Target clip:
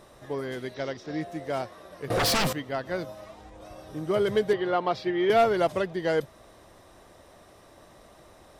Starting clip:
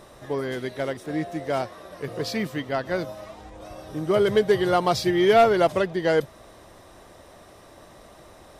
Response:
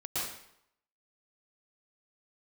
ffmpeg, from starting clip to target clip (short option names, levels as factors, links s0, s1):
-filter_complex "[0:a]asettb=1/sr,asplit=3[s0][s1][s2];[s0]atrim=end=0.744[s3];[s1]atrim=start=0.74:end=1.21,asetpts=PTS-STARTPTS,afade=t=in:d=0.004:c=qsin,afade=t=out:st=0.466:d=0.004:c=qsin,highshelf=f=7400:t=q:w=3:g=-12.5[s4];[s2]atrim=start=1.206[s5];[s3][s4]acrossfade=d=0.004:c1=hsin:c2=qsin[s6];[s6][s5]acrossfade=d=0.004:c1=qsin:c2=hsin,asettb=1/sr,asplit=3[s7][s8][s9];[s7]atrim=end=2.104[s10];[s8]atrim=start=2.1:end=2.53,asetpts=PTS-STARTPTS,afade=t=in:d=0.004:c=qsin,afade=t=out:st=0.426:d=0.004:c=qsin,aeval=exprs='0.158*sin(PI/2*5.01*val(0)/0.158)':c=same[s11];[s9]atrim=start=2.526[s12];[s10][s11]acrossfade=d=0.004:c1=hsin:c2=qsin[s13];[s13][s12]acrossfade=d=0.004:c1=qsin:c2=hsin,asettb=1/sr,asplit=3[s14][s15][s16];[s14]atrim=end=4.534[s17];[s15]atrim=start=4.53:end=5.3,asetpts=PTS-STARTPTS,afade=t=in:d=0.004:c=qsin,afade=t=out:st=0.766:d=0.004:c=qsin,acrossover=split=200 3900:gain=0.251 1 0.0708[s18][s19][s20];[s18][s19][s20]amix=inputs=3:normalize=0[s21];[s16]atrim=start=5.296[s22];[s17][s21]acrossfade=d=0.004:c1=hsin:c2=qsin[s23];[s23][s22]acrossfade=d=0.004:c1=qsin:c2=hsin,volume=0.596"